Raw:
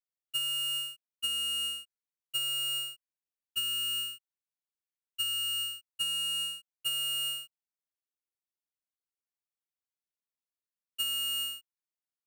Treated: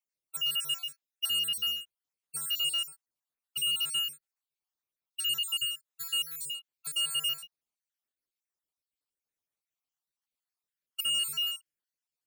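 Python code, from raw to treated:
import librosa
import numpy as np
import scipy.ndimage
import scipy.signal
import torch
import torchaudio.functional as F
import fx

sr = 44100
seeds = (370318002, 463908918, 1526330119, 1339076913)

y = fx.spec_dropout(x, sr, seeds[0], share_pct=53)
y = fx.low_shelf(y, sr, hz=460.0, db=-9.5, at=(5.65, 6.46))
y = F.gain(torch.from_numpy(y), 4.5).numpy()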